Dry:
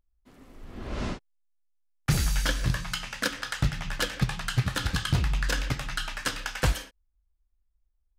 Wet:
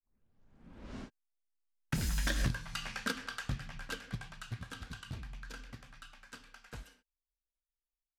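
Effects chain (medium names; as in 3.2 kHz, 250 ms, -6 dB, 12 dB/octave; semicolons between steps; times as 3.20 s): tape start-up on the opening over 1.07 s; Doppler pass-by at 2.48 s, 26 m/s, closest 1.4 m; level rider gain up to 8 dB; small resonant body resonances 230/1600 Hz, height 7 dB; compression 16:1, threshold -35 dBFS, peak gain reduction 24 dB; trim +6 dB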